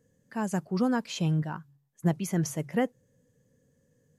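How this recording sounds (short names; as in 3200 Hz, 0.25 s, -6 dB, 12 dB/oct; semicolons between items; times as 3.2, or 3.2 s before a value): noise floor -71 dBFS; spectral tilt -6.5 dB/oct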